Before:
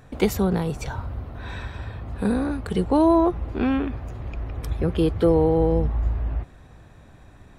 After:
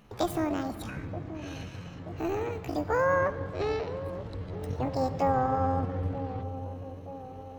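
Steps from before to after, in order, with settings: AM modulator 230 Hz, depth 35%; pitch shift +8.5 st; feedback echo behind a band-pass 929 ms, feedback 61%, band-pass 400 Hz, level -11.5 dB; on a send at -13 dB: reverberation, pre-delay 47 ms; on the sum: trim -6 dB

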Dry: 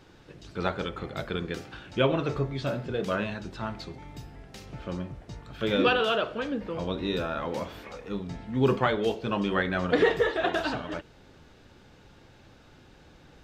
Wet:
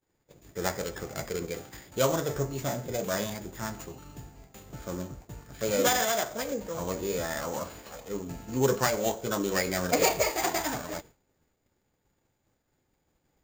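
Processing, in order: sorted samples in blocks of 8 samples; formant shift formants +4 st; expander -41 dBFS; trim -1.5 dB

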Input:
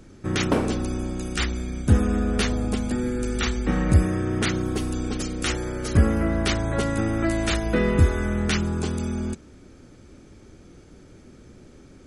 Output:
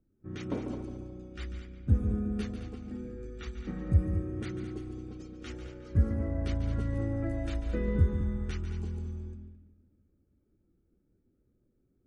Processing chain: multi-head delay 72 ms, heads second and third, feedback 48%, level -7.5 dB; level-controlled noise filter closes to 1.9 kHz, open at -18 dBFS; spectral contrast expander 1.5:1; trim -7.5 dB

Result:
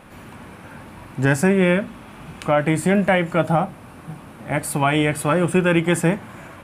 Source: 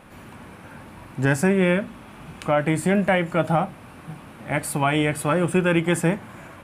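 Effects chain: 3.44–4.71 s: peaking EQ 2.6 kHz -3 dB 1.8 oct; trim +2.5 dB

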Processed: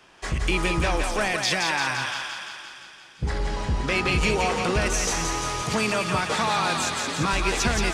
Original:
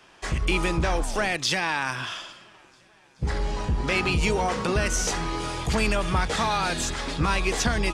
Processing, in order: 5.62–7.33 s: high-pass 100 Hz 24 dB/octave; thinning echo 172 ms, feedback 68%, high-pass 510 Hz, level -4 dB

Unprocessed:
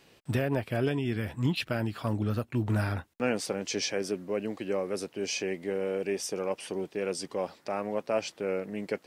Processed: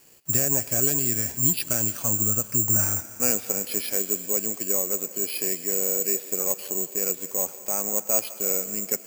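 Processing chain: on a send at -12.5 dB: tilt EQ +2 dB/octave + reverberation RT60 2.9 s, pre-delay 117 ms; on the sum: careless resampling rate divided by 6×, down filtered, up zero stuff; trim -2 dB

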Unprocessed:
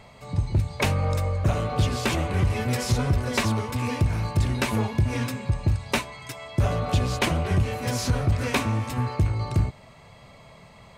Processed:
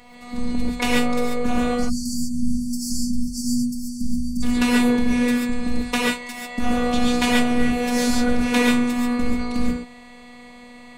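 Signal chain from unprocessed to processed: spectral selection erased 1.75–4.43 s, 220–4400 Hz; robot voice 243 Hz; gated-style reverb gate 160 ms rising, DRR -4 dB; trim +2.5 dB

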